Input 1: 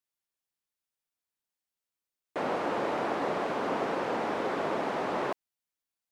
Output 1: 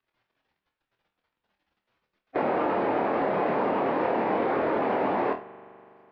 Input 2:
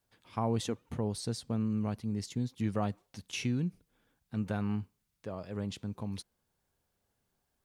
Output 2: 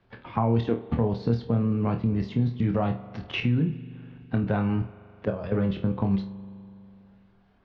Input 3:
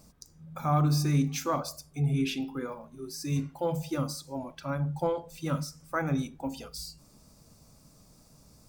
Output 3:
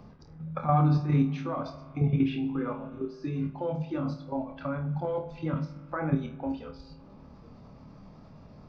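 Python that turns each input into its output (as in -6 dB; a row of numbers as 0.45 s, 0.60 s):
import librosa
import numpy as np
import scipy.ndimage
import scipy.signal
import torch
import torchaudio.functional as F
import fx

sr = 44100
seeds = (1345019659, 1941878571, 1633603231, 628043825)

y = fx.spec_quant(x, sr, step_db=15)
y = fx.level_steps(y, sr, step_db=13)
y = scipy.ndimage.gaussian_filter1d(y, 2.8, mode='constant')
y = fx.room_flutter(y, sr, wall_m=4.4, rt60_s=0.24)
y = fx.rev_spring(y, sr, rt60_s=1.8, pass_ms=(41,), chirp_ms=70, drr_db=15.5)
y = fx.band_squash(y, sr, depth_pct=40)
y = librosa.util.normalize(y) * 10.0 ** (-12 / 20.0)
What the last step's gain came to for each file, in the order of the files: +12.5 dB, +16.0 dB, +6.5 dB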